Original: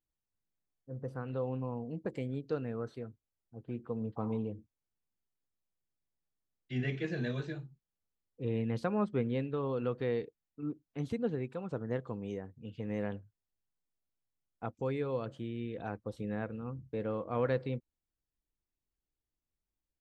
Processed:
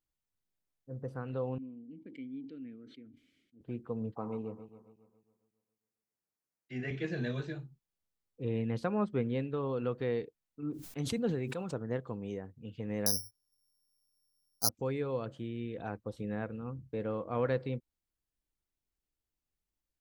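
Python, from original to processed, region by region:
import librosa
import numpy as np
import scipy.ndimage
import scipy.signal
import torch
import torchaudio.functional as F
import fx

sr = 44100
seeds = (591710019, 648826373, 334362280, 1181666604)

y = fx.chain(x, sr, fx.vowel_filter(vowel='i'),
    fx.sustainer(db_per_s=58.0), at=(1.58, 3.61))
y = fx.chain(y, sr, fx.reverse_delay_fb(ms=137, feedback_pct=57, wet_db=-12.0),
    fx.highpass(hz=270.0, slope=6),
    fx.peak_eq(hz=3400.0, db=-13.0, octaves=0.37), at=(4.14, 6.91))
y = fx.chain(y, sr, fx.high_shelf(hz=3800.0, db=9.0),
    fx.sustainer(db_per_s=51.0), at=(10.71, 11.74))
y = fx.chain(y, sr, fx.cheby2_lowpass(hz=5200.0, order=4, stop_db=60),
    fx.resample_bad(factor=8, down='filtered', up='zero_stuff'), at=(13.06, 14.69))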